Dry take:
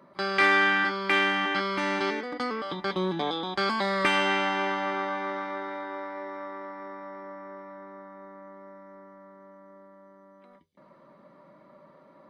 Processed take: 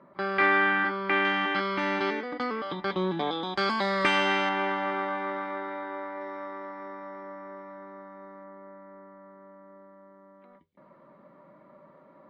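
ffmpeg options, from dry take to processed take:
-af "asetnsamples=n=441:p=0,asendcmd='1.25 lowpass f 3800;3.43 lowpass f 7000;4.49 lowpass f 3200;6.21 lowpass f 5100;8.44 lowpass f 2600',lowpass=2.2k"

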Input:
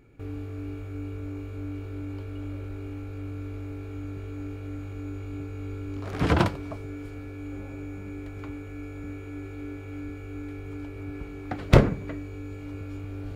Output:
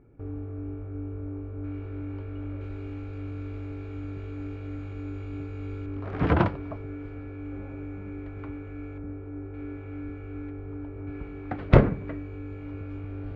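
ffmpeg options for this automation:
-af "asetnsamples=n=441:p=0,asendcmd='1.64 lowpass f 2200;2.61 lowpass f 4100;5.86 lowpass f 2100;8.98 lowpass f 1100;9.54 lowpass f 2000;10.5 lowpass f 1300;11.07 lowpass f 2300',lowpass=1.1k"

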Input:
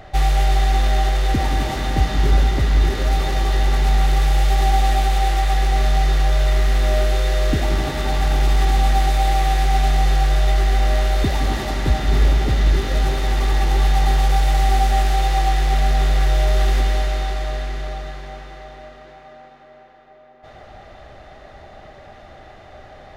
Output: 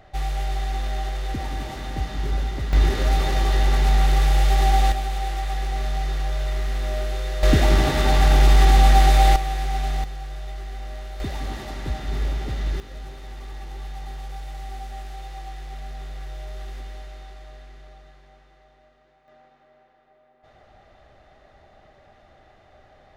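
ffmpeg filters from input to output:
-af "asetnsamples=n=441:p=0,asendcmd='2.73 volume volume -1.5dB;4.92 volume volume -8.5dB;7.43 volume volume 2.5dB;9.36 volume volume -8dB;10.04 volume volume -17dB;11.2 volume volume -10dB;12.8 volume volume -18.5dB;19.28 volume volume -11.5dB',volume=-9.5dB"

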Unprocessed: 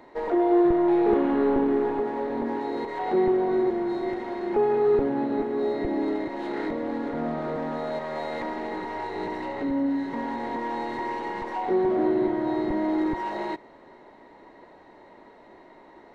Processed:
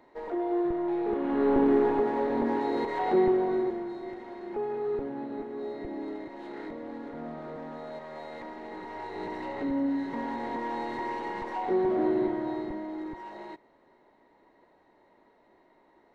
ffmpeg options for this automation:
-af "volume=8dB,afade=t=in:st=1.18:d=0.5:silence=0.334965,afade=t=out:st=2.94:d=1:silence=0.281838,afade=t=in:st=8.6:d=1.03:silence=0.446684,afade=t=out:st=12.19:d=0.68:silence=0.354813"

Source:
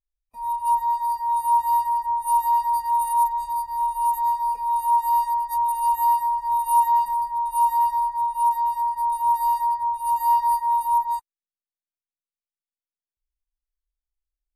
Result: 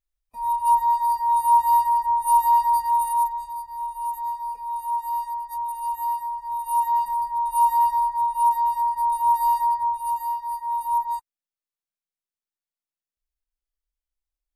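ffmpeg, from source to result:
-af "volume=19.5dB,afade=t=out:st=2.72:d=0.8:silence=0.354813,afade=t=in:st=6.54:d=0.96:silence=0.421697,afade=t=out:st=9.85:d=0.54:silence=0.237137,afade=t=in:st=10.39:d=0.6:silence=0.334965"

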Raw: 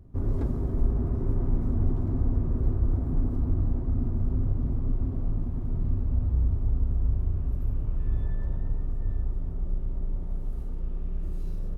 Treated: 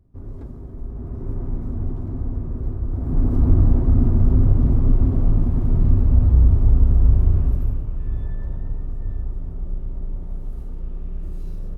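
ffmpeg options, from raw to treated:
-af "volume=11dB,afade=t=in:st=0.86:d=0.47:silence=0.446684,afade=t=in:st=2.91:d=0.58:silence=0.266073,afade=t=out:st=7.37:d=0.48:silence=0.354813"

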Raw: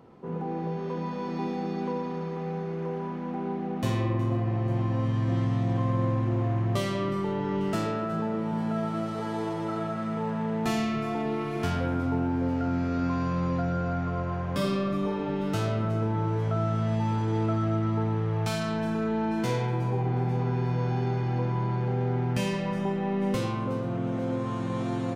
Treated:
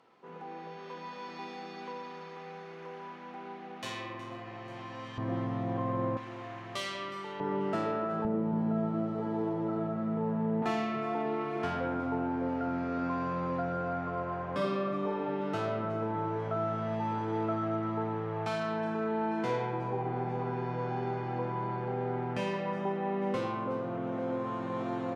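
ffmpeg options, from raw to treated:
-af "asetnsamples=n=441:p=0,asendcmd='5.18 bandpass f 730;6.17 bandpass f 3100;7.4 bandpass f 760;8.25 bandpass f 300;10.62 bandpass f 850',bandpass=f=3.1k:t=q:w=0.54:csg=0"

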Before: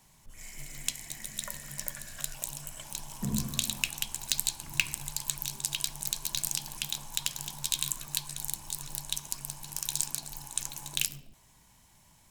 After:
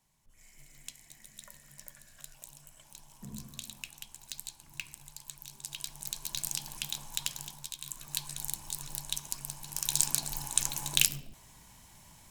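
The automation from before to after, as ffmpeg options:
-af "volume=17dB,afade=t=in:st=5.43:d=1.17:silence=0.298538,afade=t=out:st=7.32:d=0.46:silence=0.251189,afade=t=in:st=7.78:d=0.46:silence=0.223872,afade=t=in:st=9.7:d=0.43:silence=0.473151"

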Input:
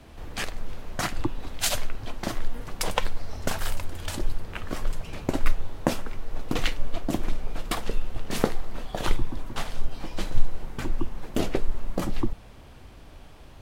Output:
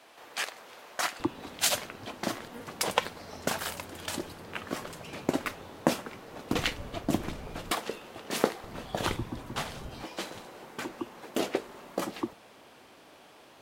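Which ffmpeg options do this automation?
-af "asetnsamples=n=441:p=0,asendcmd='1.2 highpass f 180;6.52 highpass f 66;7.71 highpass f 280;8.64 highpass f 79;10.04 highpass f 320',highpass=590"

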